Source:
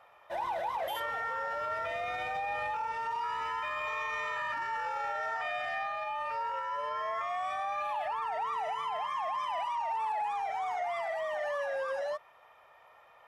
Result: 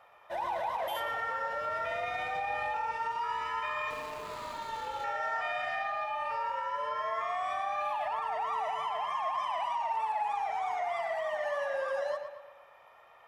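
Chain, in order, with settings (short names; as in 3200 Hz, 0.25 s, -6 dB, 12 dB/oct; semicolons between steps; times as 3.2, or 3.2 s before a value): 3.9–5.04 median filter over 25 samples; tape echo 0.116 s, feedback 53%, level -6.5 dB, low-pass 4400 Hz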